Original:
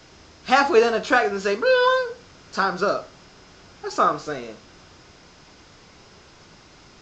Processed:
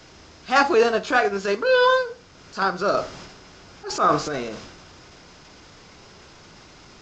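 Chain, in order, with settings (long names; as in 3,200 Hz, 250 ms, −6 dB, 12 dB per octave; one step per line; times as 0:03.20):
transient designer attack −8 dB, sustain −4 dB, from 0:02.93 sustain +7 dB
level +2 dB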